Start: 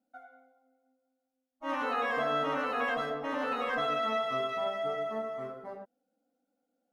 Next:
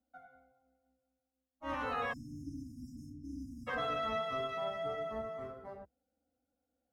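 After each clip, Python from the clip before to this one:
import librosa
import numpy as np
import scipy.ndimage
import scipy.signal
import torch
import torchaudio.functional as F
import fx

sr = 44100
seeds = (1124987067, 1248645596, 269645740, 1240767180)

y = fx.octave_divider(x, sr, octaves=2, level_db=-5.0)
y = fx.spec_erase(y, sr, start_s=2.13, length_s=1.54, low_hz=340.0, high_hz=4900.0)
y = y * 10.0 ** (-5.0 / 20.0)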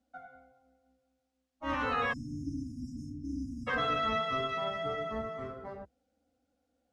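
y = scipy.signal.sosfilt(scipy.signal.butter(2, 7200.0, 'lowpass', fs=sr, output='sos'), x)
y = fx.dynamic_eq(y, sr, hz=690.0, q=1.5, threshold_db=-51.0, ratio=4.0, max_db=-6)
y = y * 10.0 ** (7.0 / 20.0)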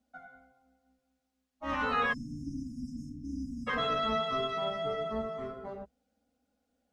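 y = x + 0.47 * np.pad(x, (int(4.8 * sr / 1000.0), 0))[:len(x)]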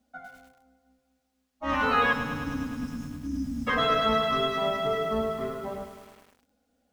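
y = x + 10.0 ** (-20.0 / 20.0) * np.pad(x, (int(115 * sr / 1000.0), 0))[:len(x)]
y = fx.echo_crushed(y, sr, ms=104, feedback_pct=80, bits=9, wet_db=-10.5)
y = y * 10.0 ** (6.0 / 20.0)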